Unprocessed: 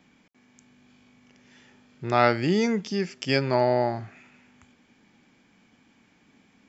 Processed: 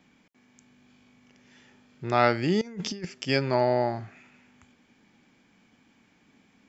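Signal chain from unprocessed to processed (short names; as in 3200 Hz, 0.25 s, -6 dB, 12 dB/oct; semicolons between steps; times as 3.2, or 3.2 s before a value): 2.61–3.05 negative-ratio compressor -32 dBFS, ratio -0.5; gain -1.5 dB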